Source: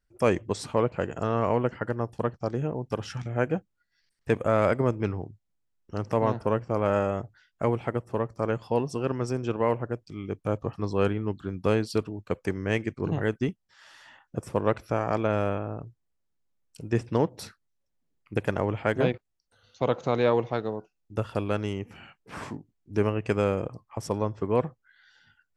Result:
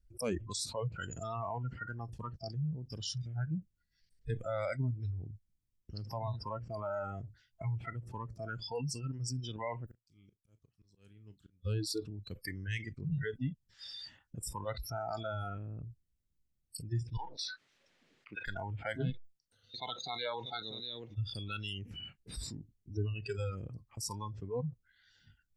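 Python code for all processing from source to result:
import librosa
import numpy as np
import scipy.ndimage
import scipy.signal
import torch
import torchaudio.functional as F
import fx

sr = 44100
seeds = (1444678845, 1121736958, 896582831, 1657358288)

y = fx.chain(x, sr, fx.auto_swell(attack_ms=798.0),
    fx.pre_emphasis(coefficient=0.9),
    fx.doubler(ms=35.0, db=-13.5), at=(9.86, 11.65))
y = fx.chain(y, sr, fx.bandpass_edges(low_hz=790.0, high_hz=2600.0),
    fx.env_flatten(amount_pct=50), at=(17.17, 18.46))
y = fx.chain(y, sr, fx.highpass(hz=430.0, slope=6),
    fx.echo_single(ms=638, db=-11.0), at=(19.1, 21.16))
y = fx.noise_reduce_blind(y, sr, reduce_db=29)
y = fx.tone_stack(y, sr, knobs='10-0-1')
y = fx.env_flatten(y, sr, amount_pct=70)
y = F.gain(torch.from_numpy(y), 6.5).numpy()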